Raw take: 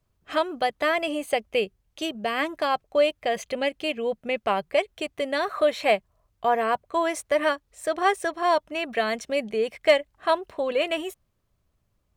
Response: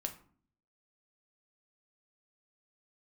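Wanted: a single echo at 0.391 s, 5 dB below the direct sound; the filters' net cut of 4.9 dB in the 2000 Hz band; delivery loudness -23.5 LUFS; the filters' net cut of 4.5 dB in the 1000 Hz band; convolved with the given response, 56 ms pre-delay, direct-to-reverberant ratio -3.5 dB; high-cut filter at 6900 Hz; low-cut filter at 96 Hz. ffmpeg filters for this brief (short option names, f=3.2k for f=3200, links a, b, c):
-filter_complex "[0:a]highpass=96,lowpass=6.9k,equalizer=f=1k:t=o:g=-5.5,equalizer=f=2k:t=o:g=-4.5,aecho=1:1:391:0.562,asplit=2[a][b];[1:a]atrim=start_sample=2205,adelay=56[c];[b][c]afir=irnorm=-1:irlink=0,volume=4dB[d];[a][d]amix=inputs=2:normalize=0,volume=-1.5dB"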